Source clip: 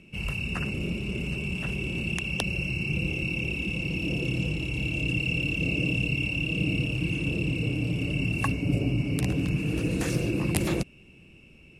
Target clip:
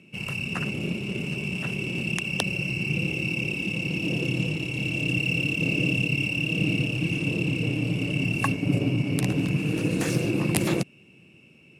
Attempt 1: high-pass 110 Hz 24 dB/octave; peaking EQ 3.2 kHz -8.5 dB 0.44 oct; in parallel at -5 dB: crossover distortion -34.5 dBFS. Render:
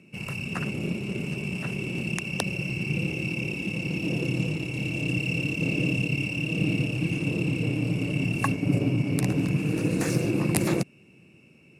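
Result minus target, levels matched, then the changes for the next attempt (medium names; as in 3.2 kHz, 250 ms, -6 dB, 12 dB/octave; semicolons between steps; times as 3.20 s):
4 kHz band -3.5 dB
remove: peaking EQ 3.2 kHz -8.5 dB 0.44 oct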